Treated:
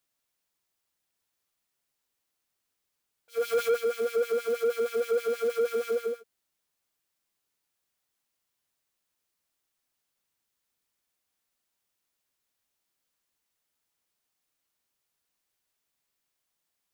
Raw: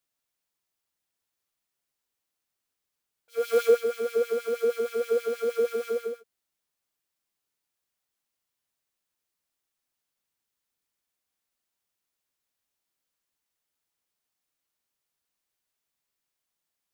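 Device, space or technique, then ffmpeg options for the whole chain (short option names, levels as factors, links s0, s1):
saturation between pre-emphasis and de-emphasis: -af "highshelf=f=2200:g=10,asoftclip=type=tanh:threshold=0.0708,highshelf=f=2200:g=-10,volume=1.33"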